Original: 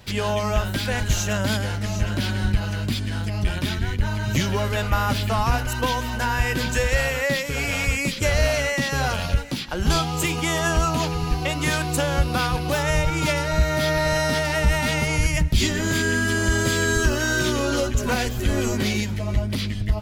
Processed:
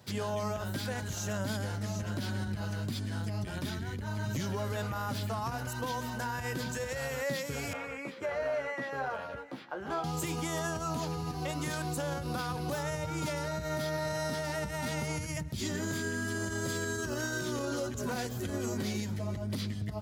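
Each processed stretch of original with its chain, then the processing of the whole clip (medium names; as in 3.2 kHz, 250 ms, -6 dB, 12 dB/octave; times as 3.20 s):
7.73–10.04 s: three-band isolator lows -18 dB, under 330 Hz, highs -22 dB, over 2.4 kHz + doubling 15 ms -7 dB
whole clip: peaking EQ 2.6 kHz -8 dB 0.99 oct; peak limiter -18 dBFS; high-pass 90 Hz 24 dB/octave; trim -7 dB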